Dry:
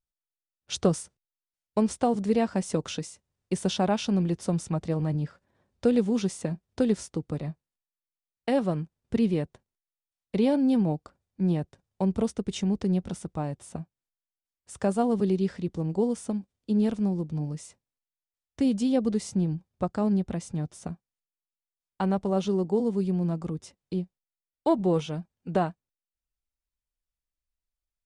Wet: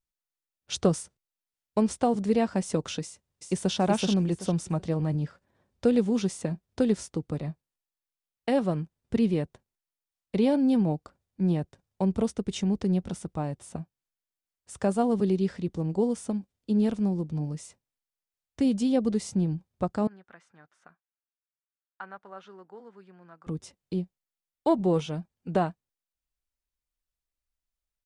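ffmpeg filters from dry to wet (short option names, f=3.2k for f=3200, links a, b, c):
-filter_complex "[0:a]asplit=2[a][b];[b]afade=t=in:st=3.03:d=0.01,afade=t=out:st=3.75:d=0.01,aecho=0:1:380|760|1140|1520:0.749894|0.187474|0.0468684|0.0117171[c];[a][c]amix=inputs=2:normalize=0,asettb=1/sr,asplit=3[d][e][f];[d]atrim=end=20.074[g];[e]atrim=start=20.07:end=23.47,asetpts=PTS-STARTPTS,afade=t=in:d=0.004:c=qsin,afade=t=out:st=3.396:d=0.004:c=qsin,bandpass=f=1.5k:t=q:w=3.4[h];[f]atrim=start=23.466[i];[g][h]acrossfade=d=0.004:c1=hsin:c2=qsin[j];[j][i]acrossfade=d=0.004:c1=qsin:c2=hsin"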